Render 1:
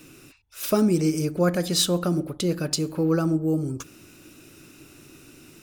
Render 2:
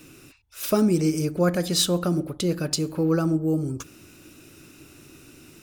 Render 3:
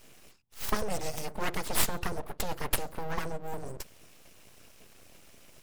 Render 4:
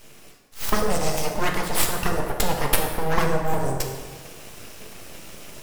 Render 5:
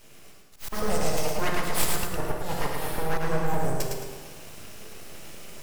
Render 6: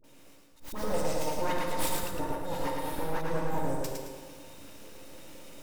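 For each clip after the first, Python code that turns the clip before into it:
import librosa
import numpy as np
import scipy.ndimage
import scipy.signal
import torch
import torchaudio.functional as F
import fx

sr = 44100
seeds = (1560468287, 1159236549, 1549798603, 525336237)

y1 = fx.peak_eq(x, sr, hz=71.0, db=4.0, octaves=0.77)
y2 = fx.hpss(y1, sr, part='harmonic', gain_db=-11)
y2 = np.abs(y2)
y3 = fx.rider(y2, sr, range_db=5, speed_s=0.5)
y3 = fx.rev_plate(y3, sr, seeds[0], rt60_s=1.5, hf_ratio=0.65, predelay_ms=0, drr_db=1.5)
y3 = y3 * librosa.db_to_amplitude(8.0)
y4 = fx.auto_swell(y3, sr, attack_ms=150.0)
y4 = fx.echo_feedback(y4, sr, ms=109, feedback_pct=38, wet_db=-4.0)
y4 = y4 * librosa.db_to_amplitude(-4.5)
y5 = fx.small_body(y4, sr, hz=(290.0, 530.0, 910.0, 3700.0), ring_ms=95, db=14)
y5 = fx.dispersion(y5, sr, late='highs', ms=41.0, hz=800.0)
y5 = y5 * librosa.db_to_amplitude(-7.0)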